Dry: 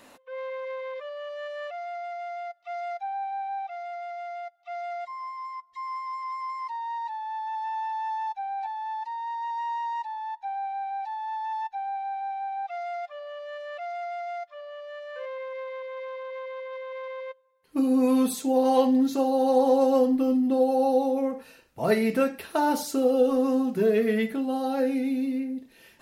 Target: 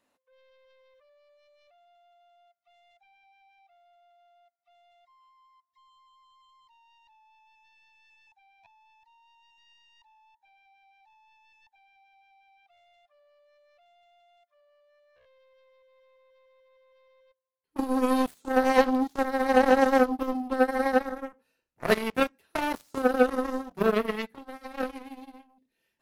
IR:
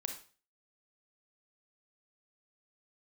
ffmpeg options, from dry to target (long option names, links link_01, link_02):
-af "aeval=exprs='0.316*(cos(1*acos(clip(val(0)/0.316,-1,1)))-cos(1*PI/2))+0.1*(cos(3*acos(clip(val(0)/0.316,-1,1)))-cos(3*PI/2))+0.00355*(cos(7*acos(clip(val(0)/0.316,-1,1)))-cos(7*PI/2))':channel_layout=same,asoftclip=type=tanh:threshold=-14.5dB,volume=8dB"